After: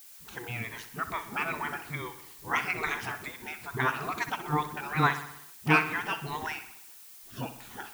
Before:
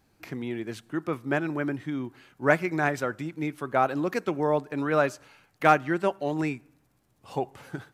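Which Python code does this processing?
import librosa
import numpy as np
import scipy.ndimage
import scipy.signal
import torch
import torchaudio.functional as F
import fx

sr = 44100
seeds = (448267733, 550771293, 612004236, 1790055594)

y = fx.spec_ripple(x, sr, per_octave=1.1, drift_hz=-2.3, depth_db=13)
y = fx.spec_gate(y, sr, threshold_db=-15, keep='weak')
y = fx.lowpass(y, sr, hz=2200.0, slope=6)
y = fx.peak_eq(y, sr, hz=550.0, db=-13.0, octaves=0.45)
y = fx.dispersion(y, sr, late='highs', ms=54.0, hz=380.0)
y = fx.dmg_noise_colour(y, sr, seeds[0], colour='blue', level_db=-59.0)
y = fx.echo_feedback(y, sr, ms=63, feedback_pct=59, wet_db=-12.5)
y = F.gain(torch.from_numpy(y), 8.0).numpy()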